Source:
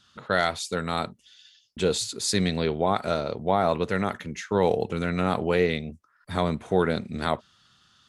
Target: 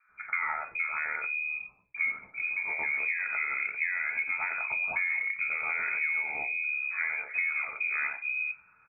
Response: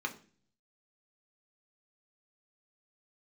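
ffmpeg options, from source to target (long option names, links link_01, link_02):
-filter_complex "[0:a]asplit=2[link_01][link_02];[link_02]asoftclip=type=hard:threshold=-18.5dB,volume=-10dB[link_03];[link_01][link_03]amix=inputs=2:normalize=0,asplit=2[link_04][link_05];[link_05]adelay=14,volume=-11.5dB[link_06];[link_04][link_06]amix=inputs=2:normalize=0,asetrate=40131,aresample=44100,asplit=2[link_07][link_08];[1:a]atrim=start_sample=2205,afade=type=out:start_time=0.4:duration=0.01,atrim=end_sample=18081,asetrate=61740,aresample=44100[link_09];[link_08][link_09]afir=irnorm=-1:irlink=0,volume=-6.5dB[link_10];[link_07][link_10]amix=inputs=2:normalize=0,aeval=exprs='0.473*(cos(1*acos(clip(val(0)/0.473,-1,1)))-cos(1*PI/2))+0.0168*(cos(5*acos(clip(val(0)/0.473,-1,1)))-cos(5*PI/2))':channel_layout=same,acrossover=split=190|1200[link_11][link_12][link_13];[link_13]adelay=90[link_14];[link_11]adelay=420[link_15];[link_15][link_12][link_14]amix=inputs=3:normalize=0,acompressor=threshold=-27dB:ratio=12,lowpass=frequency=2200:width_type=q:width=0.5098,lowpass=frequency=2200:width_type=q:width=0.6013,lowpass=frequency=2200:width_type=q:width=0.9,lowpass=frequency=2200:width_type=q:width=2.563,afreqshift=-2600"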